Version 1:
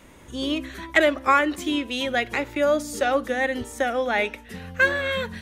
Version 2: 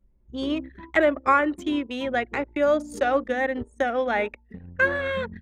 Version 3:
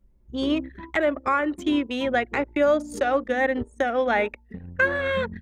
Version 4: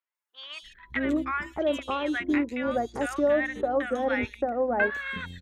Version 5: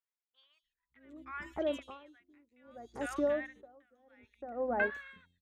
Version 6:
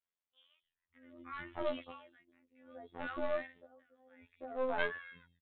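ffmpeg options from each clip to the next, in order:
ffmpeg -i in.wav -filter_complex "[0:a]anlmdn=25.1,acrossover=split=2000[link_01][link_02];[link_02]acompressor=threshold=-40dB:ratio=6[link_03];[link_01][link_03]amix=inputs=2:normalize=0" out.wav
ffmpeg -i in.wav -af "alimiter=limit=-15dB:level=0:latency=1:release=321,volume=3dB" out.wav
ffmpeg -i in.wav -filter_complex "[0:a]acrossover=split=1100|4000[link_01][link_02][link_03];[link_03]adelay=150[link_04];[link_01]adelay=620[link_05];[link_05][link_02][link_04]amix=inputs=3:normalize=0,volume=-2.5dB" out.wav
ffmpeg -i in.wav -af "aeval=exprs='val(0)*pow(10,-34*(0.5-0.5*cos(2*PI*0.63*n/s))/20)':channel_layout=same,volume=-6dB" out.wav
ffmpeg -i in.wav -af "aresample=8000,aeval=exprs='clip(val(0),-1,0.0119)':channel_layout=same,aresample=44100,afftfilt=real='hypot(re,im)*cos(PI*b)':imag='0':win_size=2048:overlap=0.75,volume=2.5dB" out.wav

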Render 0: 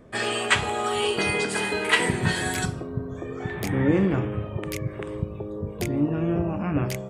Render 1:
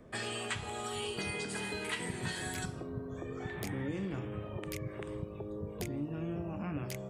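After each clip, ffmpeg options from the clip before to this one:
ffmpeg -i in.wav -filter_complex "[0:a]acrossover=split=200|3200[link_01][link_02][link_03];[link_01]acompressor=threshold=-36dB:ratio=4[link_04];[link_02]acompressor=threshold=-35dB:ratio=4[link_05];[link_03]acompressor=threshold=-38dB:ratio=4[link_06];[link_04][link_05][link_06]amix=inputs=3:normalize=0,volume=-5dB" out.wav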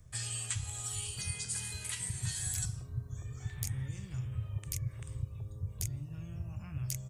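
ffmpeg -i in.wav -af "firequalizer=gain_entry='entry(120,0);entry(180,-18);entry(270,-28);entry(1000,-19);entry(3800,-9);entry(6300,3);entry(14000,0)':delay=0.05:min_phase=1,volume=7dB" out.wav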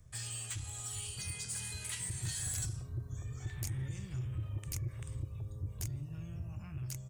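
ffmpeg -i in.wav -af "asoftclip=type=tanh:threshold=-31.5dB,dynaudnorm=framelen=690:gausssize=5:maxgain=3dB,volume=-2dB" out.wav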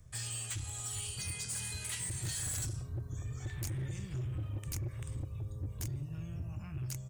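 ffmpeg -i in.wav -af "asoftclip=type=hard:threshold=-36dB,volume=2dB" out.wav

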